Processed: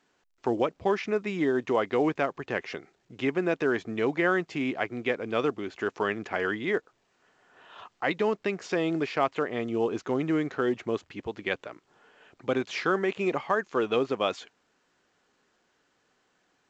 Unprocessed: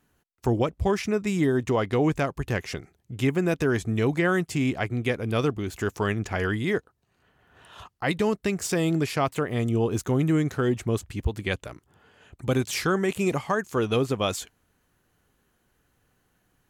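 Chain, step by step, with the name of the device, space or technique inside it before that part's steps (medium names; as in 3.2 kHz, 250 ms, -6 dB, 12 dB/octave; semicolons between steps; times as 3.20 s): telephone (band-pass 300–3200 Hz; A-law 128 kbps 16 kHz)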